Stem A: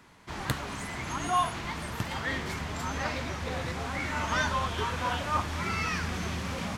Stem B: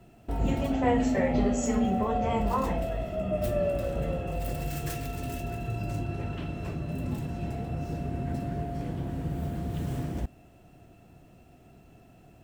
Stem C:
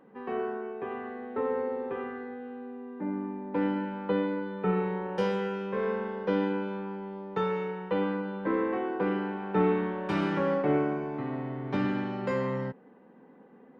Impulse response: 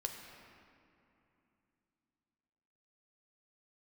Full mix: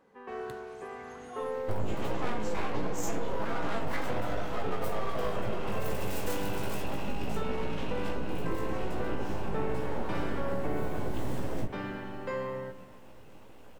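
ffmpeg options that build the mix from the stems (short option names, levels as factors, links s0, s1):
-filter_complex "[0:a]volume=0.106[s0];[1:a]aeval=exprs='abs(val(0))':c=same,flanger=delay=16:depth=3.7:speed=1.3,adelay=1400,volume=1.33,asplit=2[s1][s2];[s2]volume=0.668[s3];[2:a]equalizer=f=200:w=0.68:g=-8,volume=0.473,asplit=2[s4][s5];[s5]volume=0.501[s6];[3:a]atrim=start_sample=2205[s7];[s3][s6]amix=inputs=2:normalize=0[s8];[s8][s7]afir=irnorm=-1:irlink=0[s9];[s0][s1][s4][s9]amix=inputs=4:normalize=0,acompressor=threshold=0.0631:ratio=6"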